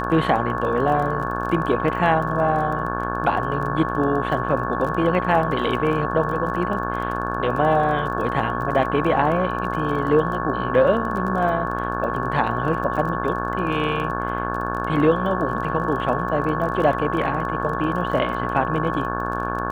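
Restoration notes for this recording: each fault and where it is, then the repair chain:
buzz 60 Hz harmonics 29 -27 dBFS
crackle 24 per s -29 dBFS
whine 1.1 kHz -27 dBFS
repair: de-click; de-hum 60 Hz, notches 29; band-stop 1.1 kHz, Q 30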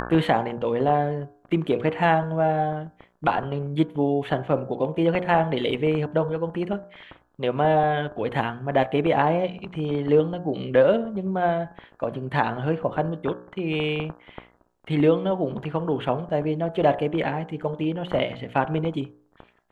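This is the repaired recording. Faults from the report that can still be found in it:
nothing left

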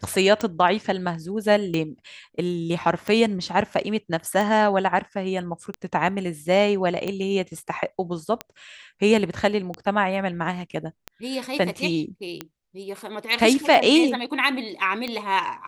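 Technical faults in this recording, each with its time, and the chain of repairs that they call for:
tick 45 rpm -14 dBFS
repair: de-click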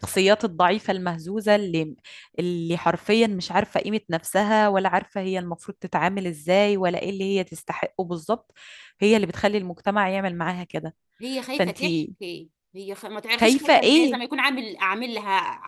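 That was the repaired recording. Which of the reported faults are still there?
nothing left

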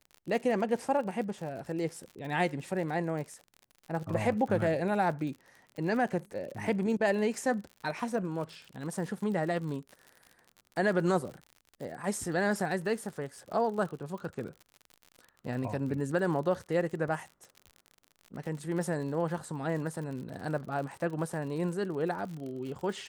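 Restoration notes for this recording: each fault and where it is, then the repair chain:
crackle 60 per s -39 dBFS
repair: de-click

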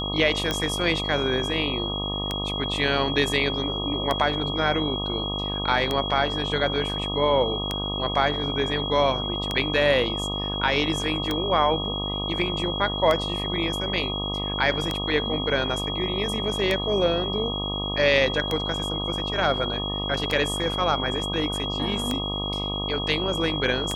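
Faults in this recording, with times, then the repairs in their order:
buzz 50 Hz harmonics 25 -31 dBFS
tick 33 1/3 rpm -10 dBFS
whine 3.3 kHz -29 dBFS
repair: de-click; de-hum 50 Hz, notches 25; band-stop 3.3 kHz, Q 30

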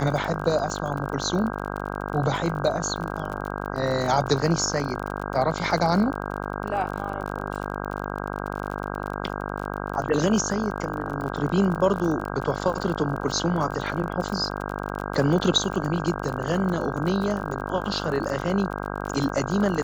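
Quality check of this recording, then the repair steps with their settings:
buzz 50 Hz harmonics 32 -31 dBFS
crackle 39 per s -30 dBFS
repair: de-click; de-hum 50 Hz, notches 32

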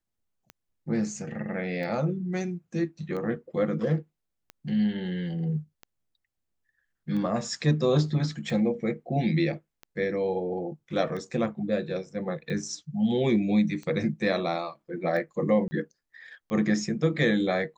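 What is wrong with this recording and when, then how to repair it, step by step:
tick 45 rpm -26 dBFS
15.68–15.71 s: dropout 30 ms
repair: de-click; interpolate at 15.68 s, 30 ms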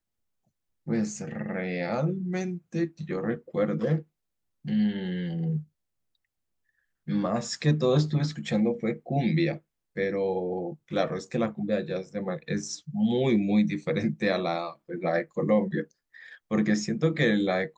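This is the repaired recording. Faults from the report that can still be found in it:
nothing left

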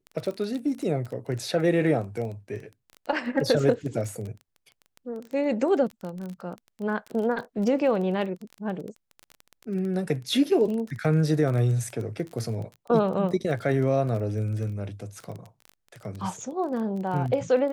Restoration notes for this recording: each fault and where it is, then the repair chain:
crackle 21 per s -32 dBFS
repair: de-click

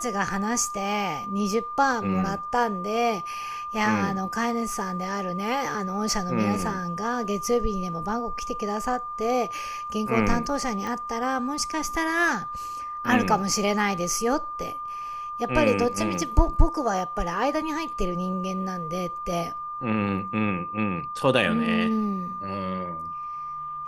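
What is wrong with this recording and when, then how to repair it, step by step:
whine 1.2 kHz -31 dBFS
10.87 s: pop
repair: de-click; band-stop 1.2 kHz, Q 30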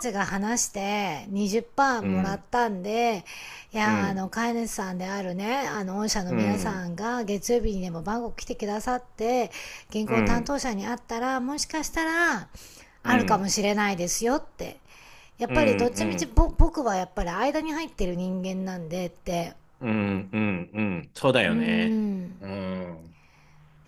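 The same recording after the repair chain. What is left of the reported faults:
nothing left

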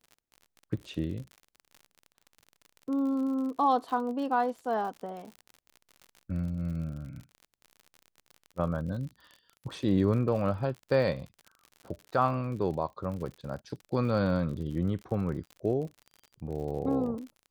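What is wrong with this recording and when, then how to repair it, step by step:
crackle 51 per s -39 dBFS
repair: de-click

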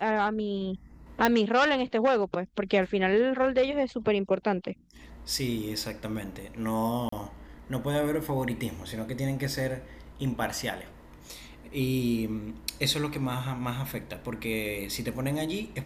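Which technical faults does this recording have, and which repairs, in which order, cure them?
1.25 s: pop -8 dBFS
7.09–7.12 s: dropout 34 ms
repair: de-click; interpolate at 7.09 s, 34 ms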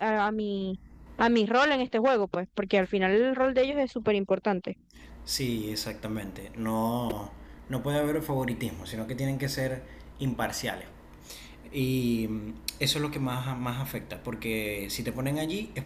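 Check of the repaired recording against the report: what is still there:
nothing left

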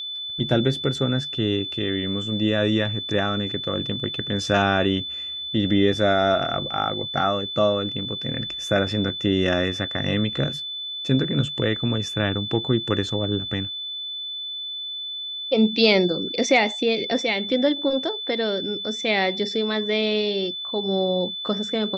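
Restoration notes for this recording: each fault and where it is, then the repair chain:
whine 3.5 kHz -29 dBFS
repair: band-stop 3.5 kHz, Q 30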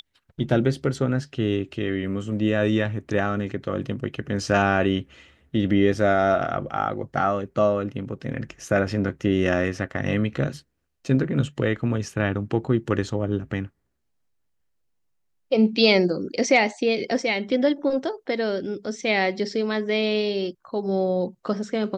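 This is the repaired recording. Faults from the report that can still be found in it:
nothing left

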